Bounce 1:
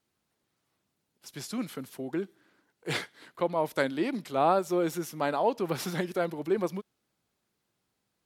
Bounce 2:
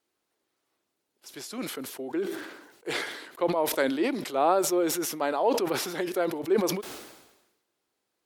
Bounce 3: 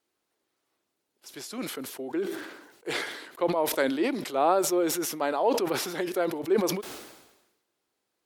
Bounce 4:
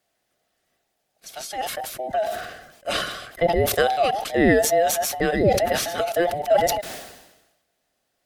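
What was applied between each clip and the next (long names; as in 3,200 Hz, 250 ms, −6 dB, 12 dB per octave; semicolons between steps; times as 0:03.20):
low shelf with overshoot 240 Hz −10 dB, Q 1.5; level that may fall only so fast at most 56 dB per second
no processing that can be heard
frequency inversion band by band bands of 1,000 Hz; level +6 dB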